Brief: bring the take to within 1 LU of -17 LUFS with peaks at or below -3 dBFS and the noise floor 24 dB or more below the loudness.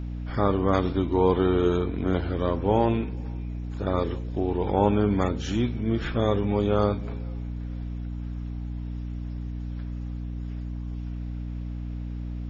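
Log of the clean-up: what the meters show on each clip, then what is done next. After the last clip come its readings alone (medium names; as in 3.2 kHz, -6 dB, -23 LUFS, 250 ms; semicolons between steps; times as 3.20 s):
hum 60 Hz; highest harmonic 300 Hz; hum level -30 dBFS; loudness -27.5 LUFS; peak level -7.5 dBFS; loudness target -17.0 LUFS
-> de-hum 60 Hz, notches 5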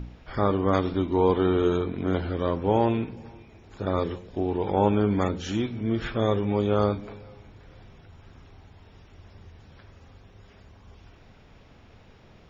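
hum not found; loudness -25.5 LUFS; peak level -7.5 dBFS; loudness target -17.0 LUFS
-> trim +8.5 dB; peak limiter -3 dBFS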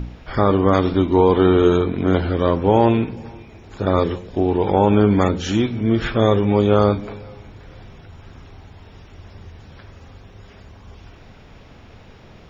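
loudness -17.5 LUFS; peak level -3.0 dBFS; noise floor -45 dBFS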